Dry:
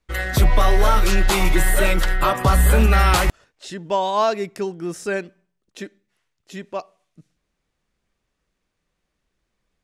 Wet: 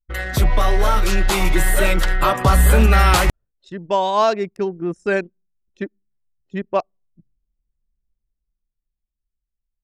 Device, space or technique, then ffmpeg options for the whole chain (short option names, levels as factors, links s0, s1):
voice memo with heavy noise removal: -af "anlmdn=25.1,dynaudnorm=f=260:g=13:m=3.55,volume=0.891"